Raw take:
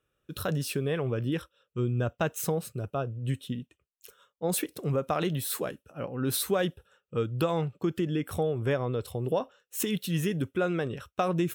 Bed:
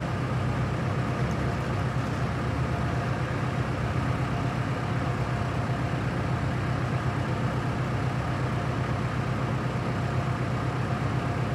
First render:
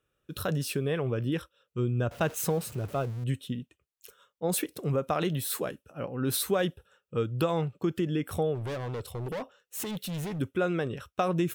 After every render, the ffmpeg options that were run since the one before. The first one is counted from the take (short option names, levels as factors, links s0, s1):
-filter_complex "[0:a]asettb=1/sr,asplit=3[s0][s1][s2];[s0]atrim=end=2.114[s3];[s1]atrim=start=2.11:end=3.24,asetpts=PTS-STARTPTS,afade=t=in:d=0.004:c=qsin,afade=t=out:st=1.126:d=0.004:c=qsin,aeval=exprs='val(0)+0.5*0.00891*sgn(val(0))':c=same[s4];[s2]atrim=start=3.236[s5];[s3][s4]acrossfade=d=0.004:c1=hsin:c2=qsin[s6];[s6][s5]acrossfade=d=0.004:c1=qsin:c2=hsin,asplit=3[s7][s8][s9];[s7]afade=t=out:st=8.54:d=0.02[s10];[s8]asoftclip=type=hard:threshold=0.0251,afade=t=in:st=8.54:d=0.02,afade=t=out:st=10.38:d=0.02[s11];[s9]afade=t=in:st=10.38:d=0.02[s12];[s10][s11][s12]amix=inputs=3:normalize=0"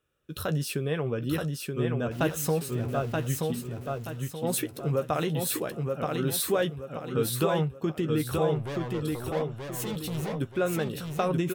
-filter_complex "[0:a]asplit=2[s0][s1];[s1]adelay=13,volume=0.299[s2];[s0][s2]amix=inputs=2:normalize=0,asplit=2[s3][s4];[s4]aecho=0:1:928|1856|2784|3712|4640:0.668|0.241|0.0866|0.0312|0.0112[s5];[s3][s5]amix=inputs=2:normalize=0"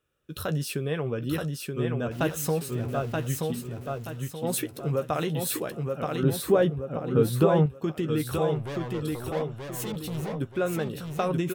-filter_complex "[0:a]asettb=1/sr,asplit=3[s0][s1][s2];[s0]atrim=end=6.234[s3];[s1]atrim=start=6.23:end=7.66,asetpts=PTS-STARTPTS,afade=t=in:d=0.004:c=qsin,afade=t=out:st=1.426:d=0.004:c=qsin,tiltshelf=f=1400:g=6.5[s4];[s2]atrim=start=7.656[s5];[s3][s4]acrossfade=d=0.004:c1=hsin:c2=qsin[s6];[s6][s5]acrossfade=d=0.004:c1=qsin:c2=hsin,asettb=1/sr,asplit=3[s7][s8][s9];[s7]atrim=end=9.924[s10];[s8]atrim=start=9.92:end=11.2,asetpts=PTS-STARTPTS,afade=t=in:d=0.004:c=qsin,afade=t=out:st=1.276:d=0.004:c=qsin,adynamicequalizer=threshold=0.00562:dfrequency=1700:dqfactor=0.7:tfrequency=1700:tqfactor=0.7:attack=5:release=100:ratio=0.375:range=2.5:mode=cutabove:tftype=highshelf[s11];[s9]atrim=start=11.196[s12];[s10][s11]acrossfade=d=0.004:c1=hsin:c2=qsin[s13];[s13][s12]acrossfade=d=0.004:c1=qsin:c2=hsin"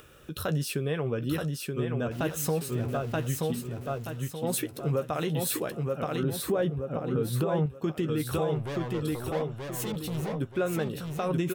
-af "acompressor=mode=upward:threshold=0.0178:ratio=2.5,alimiter=limit=0.112:level=0:latency=1:release=141"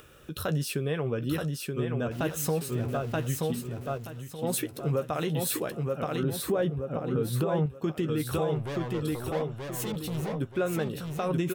-filter_complex "[0:a]asettb=1/sr,asplit=3[s0][s1][s2];[s0]atrim=end=3.974[s3];[s1]atrim=start=3.97:end=4.39,asetpts=PTS-STARTPTS,afade=t=in:d=0.004:c=qsin,afade=t=out:st=0.416:d=0.004:c=qsin,acompressor=threshold=0.0158:ratio=6:attack=3.2:release=140:knee=1:detection=peak[s4];[s2]atrim=start=4.386[s5];[s3][s4]acrossfade=d=0.004:c1=hsin:c2=qsin[s6];[s6][s5]acrossfade=d=0.004:c1=qsin:c2=hsin"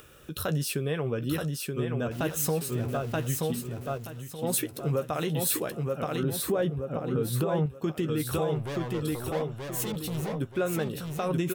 -af "highshelf=f=5600:g=4.5"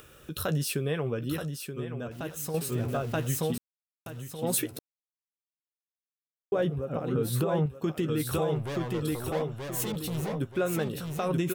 -filter_complex "[0:a]asplit=6[s0][s1][s2][s3][s4][s5];[s0]atrim=end=2.54,asetpts=PTS-STARTPTS,afade=t=out:st=0.95:d=1.59:c=qua:silence=0.421697[s6];[s1]atrim=start=2.54:end=3.58,asetpts=PTS-STARTPTS,afade=t=in:d=0.004:c=hsin:silence=0.421697,afade=t=out:st=1.036:d=0.004:c=hsin[s7];[s2]atrim=start=3.58:end=4.06,asetpts=PTS-STARTPTS,volume=0[s8];[s3]atrim=start=4.06:end=4.79,asetpts=PTS-STARTPTS,afade=t=in:d=0.004:c=hsin,afade=t=out:st=0.726:d=0.004:c=hsin[s9];[s4]atrim=start=4.79:end=6.52,asetpts=PTS-STARTPTS,volume=0[s10];[s5]atrim=start=6.52,asetpts=PTS-STARTPTS,afade=t=in:d=0.004:c=hsin[s11];[s6][s7][s8][s9][s10][s11]concat=n=6:v=0:a=1"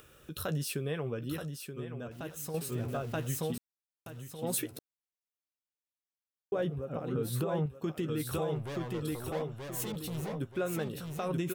-af "volume=0.562"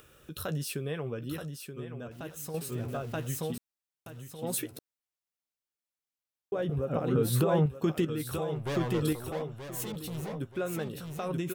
-filter_complex "[0:a]asettb=1/sr,asplit=3[s0][s1][s2];[s0]atrim=end=6.694[s3];[s1]atrim=start=6.69:end=8.05,asetpts=PTS-STARTPTS,afade=t=in:d=0.004:c=qsin,afade=t=out:st=1.356:d=0.004:c=qsin,acontrast=69[s4];[s2]atrim=start=8.046[s5];[s3][s4]acrossfade=d=0.004:c1=hsin:c2=qsin[s6];[s6][s5]acrossfade=d=0.004:c1=qsin:c2=hsin,asettb=1/sr,asplit=3[s7][s8][s9];[s7]atrim=end=8.664[s10];[s8]atrim=start=8.66:end=9.13,asetpts=PTS-STARTPTS,afade=t=in:d=0.004:c=qsin,afade=t=out:st=0.466:d=0.004:c=qsin,acontrast=74[s11];[s9]atrim=start=9.126[s12];[s10][s11]acrossfade=d=0.004:c1=hsin:c2=qsin[s13];[s13][s12]acrossfade=d=0.004:c1=qsin:c2=hsin"